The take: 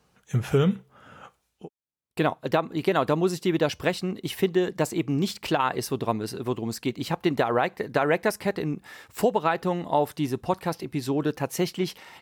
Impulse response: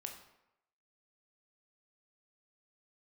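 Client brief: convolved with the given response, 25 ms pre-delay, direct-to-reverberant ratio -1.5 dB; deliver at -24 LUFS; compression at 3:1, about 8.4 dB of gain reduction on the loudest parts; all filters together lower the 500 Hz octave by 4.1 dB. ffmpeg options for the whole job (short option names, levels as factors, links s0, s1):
-filter_complex "[0:a]equalizer=f=500:t=o:g=-5.5,acompressor=threshold=0.0282:ratio=3,asplit=2[s0][s1];[1:a]atrim=start_sample=2205,adelay=25[s2];[s1][s2]afir=irnorm=-1:irlink=0,volume=1.68[s3];[s0][s3]amix=inputs=2:normalize=0,volume=2.37"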